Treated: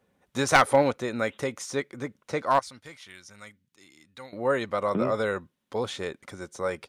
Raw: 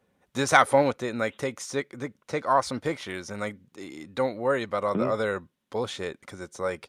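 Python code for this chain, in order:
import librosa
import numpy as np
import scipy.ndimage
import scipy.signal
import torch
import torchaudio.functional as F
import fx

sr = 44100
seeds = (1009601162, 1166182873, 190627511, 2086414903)

y = np.minimum(x, 2.0 * 10.0 ** (-12.5 / 20.0) - x)
y = fx.tone_stack(y, sr, knobs='5-5-5', at=(2.59, 4.33))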